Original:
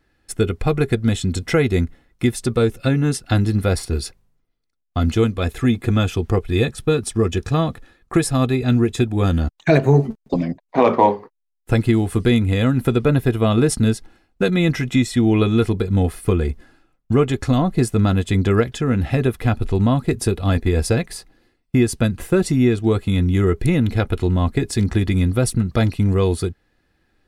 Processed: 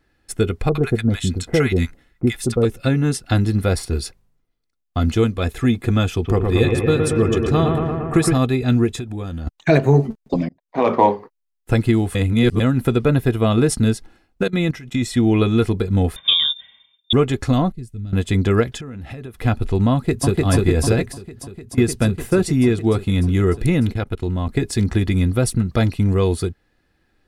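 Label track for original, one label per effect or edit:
0.690000	2.650000	bands offset in time lows, highs 60 ms, split 930 Hz
6.130000	8.380000	analogue delay 0.115 s, stages 2048, feedback 77%, level -4 dB
8.950000	9.470000	compressor, threshold -24 dBFS
10.490000	10.980000	fade in
12.150000	12.600000	reverse
14.430000	15.030000	level quantiser steps of 18 dB
16.160000	17.130000	inverted band carrier 3600 Hz
17.720000	18.130000	passive tone stack bass-middle-treble 10-0-1
18.770000	19.410000	compressor 8:1, threshold -29 dBFS
19.930000	20.360000	echo throw 0.3 s, feedback 80%, level -0.5 dB
21.070000	21.780000	compressor 12:1, threshold -30 dBFS
23.920000	24.490000	level quantiser steps of 21 dB

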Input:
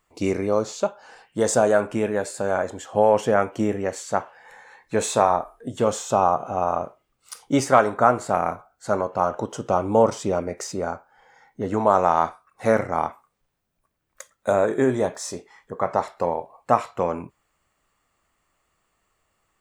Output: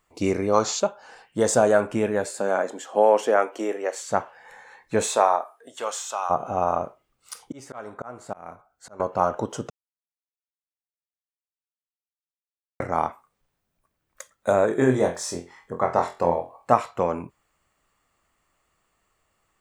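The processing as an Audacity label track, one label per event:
0.540000	0.790000	spectral gain 660–7600 Hz +9 dB
2.300000	4.010000	HPF 170 Hz -> 410 Hz 24 dB/oct
5.070000	6.290000	HPF 350 Hz -> 1500 Hz
7.440000	9.000000	auto swell 0.769 s
9.700000	12.800000	mute
14.780000	16.730000	flutter echo walls apart 4 m, dies away in 0.25 s

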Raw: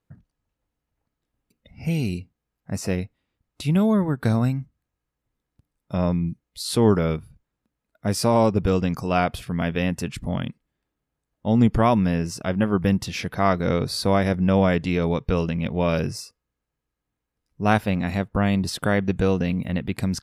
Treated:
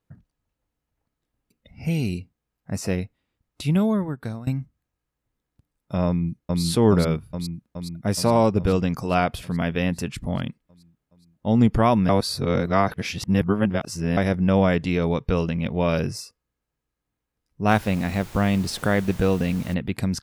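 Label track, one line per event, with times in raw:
3.720000	4.470000	fade out, to -20.5 dB
6.070000	6.620000	echo throw 0.42 s, feedback 70%, level -0.5 dB
12.090000	14.170000	reverse
17.680000	19.730000	added noise pink -43 dBFS

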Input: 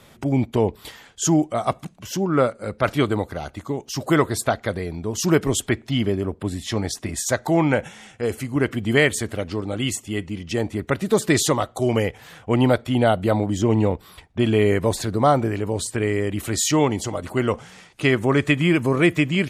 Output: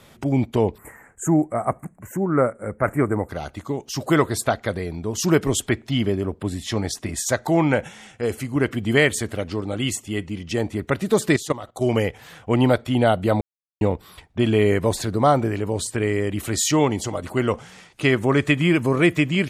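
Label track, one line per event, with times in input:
0.780000	3.290000	Chebyshev band-stop 2000–7800 Hz, order 3
11.360000	11.810000	level quantiser steps of 17 dB
13.410000	13.810000	mute

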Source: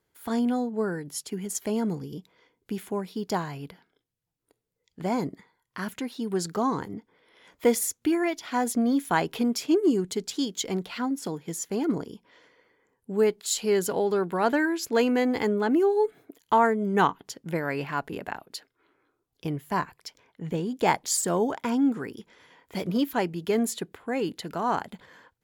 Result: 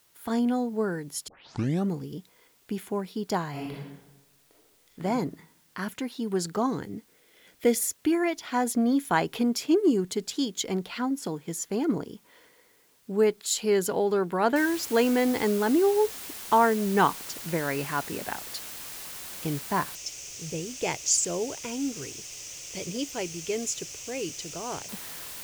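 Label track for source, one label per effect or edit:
1.280000	1.280000	tape start 0.63 s
3.500000	5.030000	reverb throw, RT60 0.98 s, DRR -4.5 dB
6.660000	7.790000	bell 1000 Hz -12 dB 0.69 oct
14.560000	14.560000	noise floor step -64 dB -40 dB
19.950000	24.890000	EQ curve 140 Hz 0 dB, 210 Hz -13 dB, 320 Hz -5 dB, 570 Hz -4 dB, 830 Hz -12 dB, 1700 Hz -11 dB, 2600 Hz +2 dB, 4100 Hz -6 dB, 6100 Hz +10 dB, 11000 Hz -12 dB

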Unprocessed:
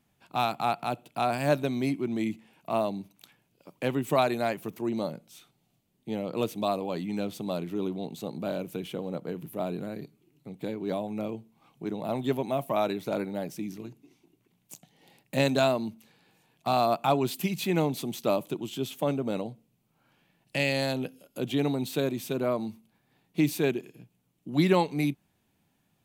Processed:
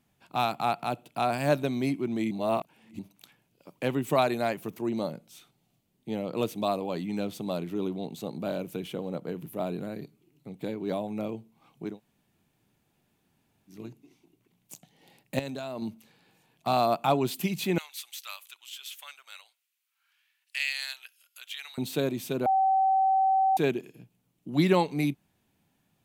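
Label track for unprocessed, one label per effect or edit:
2.310000	2.990000	reverse
11.920000	13.750000	room tone, crossfade 0.16 s
15.390000	15.820000	level quantiser steps of 18 dB
17.780000	21.780000	HPF 1500 Hz 24 dB/oct
22.460000	23.570000	bleep 768 Hz -20 dBFS

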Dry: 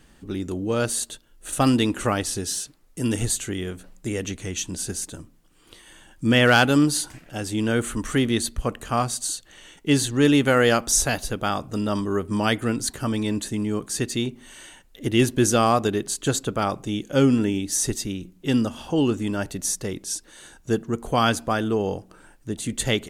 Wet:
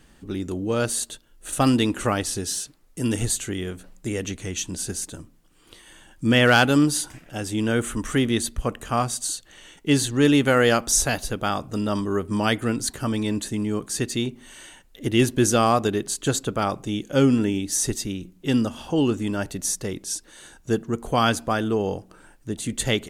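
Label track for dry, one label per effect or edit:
6.890000	9.240000	notch 4300 Hz

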